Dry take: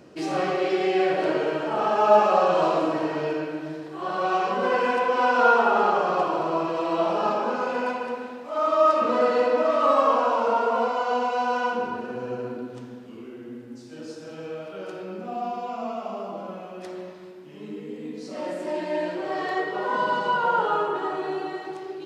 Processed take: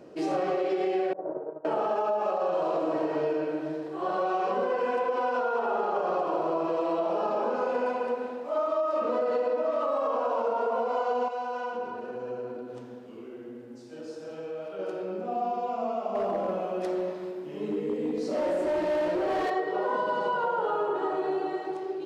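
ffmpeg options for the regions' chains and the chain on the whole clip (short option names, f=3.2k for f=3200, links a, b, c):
-filter_complex "[0:a]asettb=1/sr,asplit=3[a][b][c];[a]atrim=end=1.134[d];[b]atrim=start=1.13:end=1.65,asetpts=PTS-STARTPTS,afade=t=in:d=0.004:c=qsin,afade=t=out:st=0.516:d=0.004:c=qsin,lowpass=f=1k:w=0.5412,lowpass=f=1k:w=1.3066,equalizer=f=360:w=0.37:g=-6.5,agate=range=-33dB:threshold=-25dB:ratio=3:release=100:detection=peak[e];[c]atrim=start=1.646[f];[d][e]acrossfade=d=0.004:c1=hsin:c2=qsin[g];[g][f]acrossfade=d=0.004:c1=qsin:c2=hsin,asettb=1/sr,asplit=3[h][i][j];[h]atrim=end=11.284[k];[i]atrim=start=11.28:end=14.79,asetpts=PTS-STARTPTS,afade=t=in:d=0.004:c=qsin,afade=t=out:st=3.506:d=0.004:c=qsin,acompressor=threshold=-34dB:ratio=2:attack=3.2:release=140:knee=1:detection=peak,equalizer=f=270:w=0.58:g=-3.5[l];[j]atrim=start=14.786[m];[k][l]acrossfade=d=0.004:c1=hsin:c2=qsin[n];[n][m]acrossfade=d=0.004:c1=qsin:c2=hsin,asettb=1/sr,asplit=3[o][p][q];[o]atrim=end=16.154[r];[p]atrim=start=16.15:end=19.5,asetpts=PTS-STARTPTS,afade=t=in:d=0.004:c=qsin,afade=t=out:st=3.346:d=0.004:c=qsin,acontrast=48,volume=24dB,asoftclip=hard,volume=-24dB[s];[q]atrim=start=19.496[t];[r][s]acrossfade=d=0.004:c1=hsin:c2=qsin[u];[u][t]acrossfade=d=0.004:c1=qsin:c2=hsin,alimiter=limit=-16dB:level=0:latency=1:release=91,equalizer=f=510:t=o:w=1.9:g=9.5,acompressor=threshold=-18dB:ratio=6,volume=-6dB"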